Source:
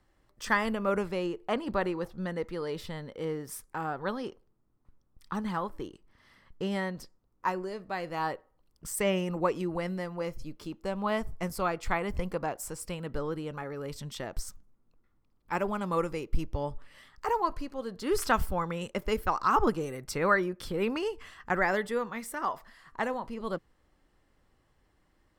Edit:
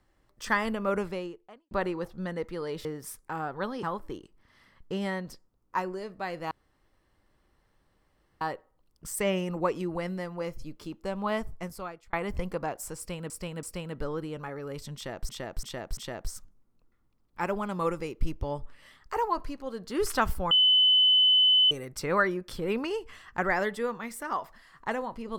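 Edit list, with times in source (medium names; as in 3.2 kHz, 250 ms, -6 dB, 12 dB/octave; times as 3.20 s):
1.09–1.71 s: fade out quadratic
2.85–3.30 s: delete
4.28–5.53 s: delete
8.21 s: insert room tone 1.90 s
11.17–11.93 s: fade out
12.77–13.10 s: loop, 3 plays
14.09–14.43 s: loop, 4 plays
18.63–19.83 s: bleep 3.02 kHz -17.5 dBFS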